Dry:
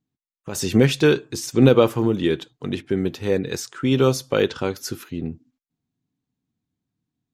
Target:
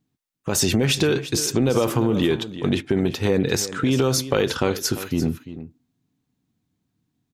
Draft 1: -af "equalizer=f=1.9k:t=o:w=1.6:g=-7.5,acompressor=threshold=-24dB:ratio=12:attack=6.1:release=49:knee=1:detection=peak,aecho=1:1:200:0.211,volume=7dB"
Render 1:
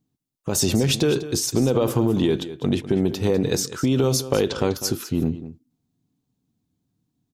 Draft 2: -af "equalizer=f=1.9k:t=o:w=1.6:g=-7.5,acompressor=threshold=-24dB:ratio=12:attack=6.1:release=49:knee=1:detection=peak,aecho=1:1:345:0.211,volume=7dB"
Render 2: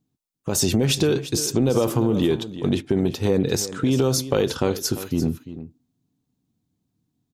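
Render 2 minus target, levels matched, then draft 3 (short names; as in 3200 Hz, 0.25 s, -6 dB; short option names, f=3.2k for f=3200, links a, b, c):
2000 Hz band -5.5 dB
-af "acompressor=threshold=-24dB:ratio=12:attack=6.1:release=49:knee=1:detection=peak,aecho=1:1:345:0.211,volume=7dB"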